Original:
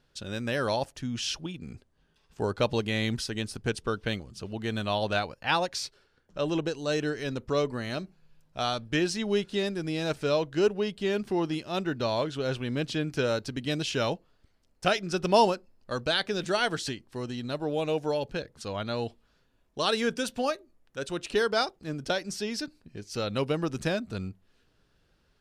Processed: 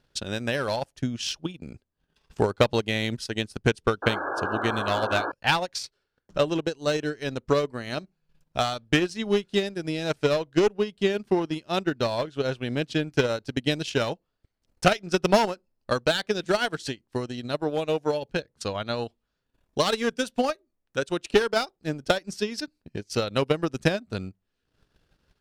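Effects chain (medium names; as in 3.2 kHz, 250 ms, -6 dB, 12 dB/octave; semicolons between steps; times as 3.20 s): one-sided clip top -23.5 dBFS, bottom -14.5 dBFS; transient shaper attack +10 dB, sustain -12 dB; painted sound noise, 4.02–5.32 s, 260–1700 Hz -30 dBFS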